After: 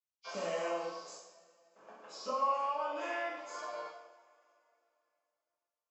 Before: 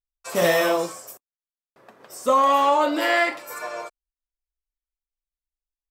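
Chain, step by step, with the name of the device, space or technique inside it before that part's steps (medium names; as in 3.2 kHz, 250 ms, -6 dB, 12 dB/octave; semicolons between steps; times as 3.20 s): 2.42–3.02 s: Chebyshev high-pass 420 Hz, order 3; hearing aid with frequency lowering (knee-point frequency compression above 2 kHz 1.5:1; compression 2:1, threshold -40 dBFS, peak gain reduction 13.5 dB; cabinet simulation 280–6800 Hz, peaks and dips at 370 Hz -5 dB, 1.9 kHz -9 dB, 3.9 kHz -9 dB); two-slope reverb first 0.8 s, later 3.2 s, from -22 dB, DRR -5 dB; trim -8 dB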